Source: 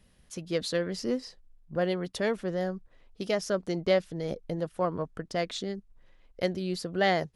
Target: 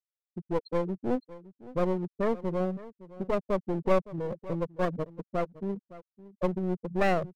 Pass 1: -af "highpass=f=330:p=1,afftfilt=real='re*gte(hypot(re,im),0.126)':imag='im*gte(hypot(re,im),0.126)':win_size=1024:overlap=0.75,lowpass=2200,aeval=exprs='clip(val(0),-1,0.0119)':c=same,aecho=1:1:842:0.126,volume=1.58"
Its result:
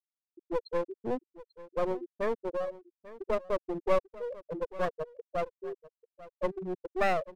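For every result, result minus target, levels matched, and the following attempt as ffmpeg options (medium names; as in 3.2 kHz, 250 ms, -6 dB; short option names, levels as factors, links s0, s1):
echo 279 ms late; 250 Hz band -5.5 dB
-af "highpass=f=330:p=1,afftfilt=real='re*gte(hypot(re,im),0.126)':imag='im*gte(hypot(re,im),0.126)':win_size=1024:overlap=0.75,lowpass=2200,aeval=exprs='clip(val(0),-1,0.0119)':c=same,aecho=1:1:563:0.126,volume=1.58"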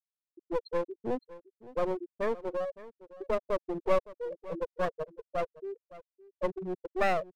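250 Hz band -5.5 dB
-af "afftfilt=real='re*gte(hypot(re,im),0.126)':imag='im*gte(hypot(re,im),0.126)':win_size=1024:overlap=0.75,lowpass=2200,aeval=exprs='clip(val(0),-1,0.0119)':c=same,aecho=1:1:563:0.126,volume=1.58"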